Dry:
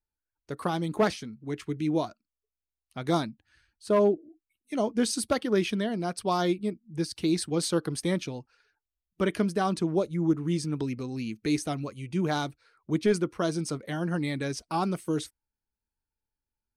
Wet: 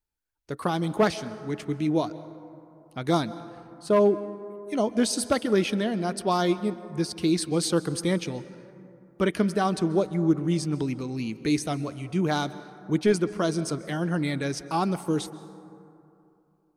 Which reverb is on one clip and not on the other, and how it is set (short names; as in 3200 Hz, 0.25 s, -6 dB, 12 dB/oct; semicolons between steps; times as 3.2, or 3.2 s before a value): plate-style reverb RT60 2.8 s, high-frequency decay 0.35×, pre-delay 0.12 s, DRR 15 dB; gain +2.5 dB